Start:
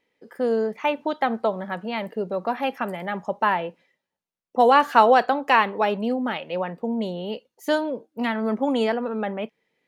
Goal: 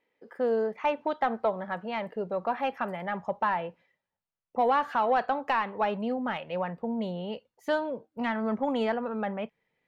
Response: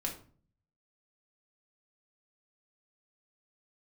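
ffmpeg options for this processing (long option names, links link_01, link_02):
-filter_complex "[0:a]alimiter=limit=-10.5dB:level=0:latency=1:release=291,asubboost=boost=6.5:cutoff=120,asplit=2[link_01][link_02];[link_02]highpass=frequency=720:poles=1,volume=8dB,asoftclip=type=tanh:threshold=-11dB[link_03];[link_01][link_03]amix=inputs=2:normalize=0,lowpass=frequency=1200:poles=1,volume=-6dB,volume=-2.5dB"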